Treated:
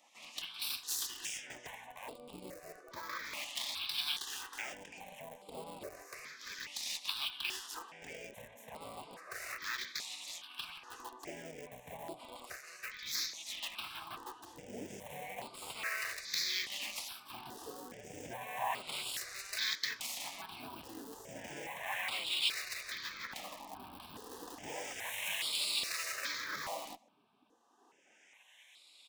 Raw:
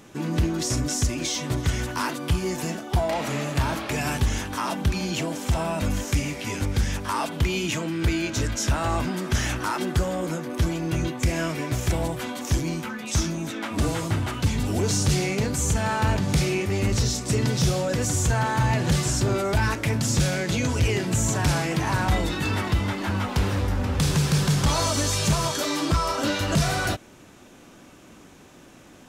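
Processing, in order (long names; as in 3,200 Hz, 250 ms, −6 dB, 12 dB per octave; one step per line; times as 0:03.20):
phase distortion by the signal itself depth 0.21 ms
low-shelf EQ 190 Hz −6.5 dB
notch filter 1,400 Hz, Q 5.1
LFO wah 0.32 Hz 340–3,200 Hz, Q 6
on a send: single-tap delay 84 ms −23.5 dB
on the sum: gate on every frequency bin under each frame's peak −10 dB weak
in parallel at −8.5 dB: comparator with hysteresis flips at −47 dBFS
on the sum: spectral tilt +4 dB per octave
step-sequenced phaser 2.4 Hz 410–6,100 Hz
level +8 dB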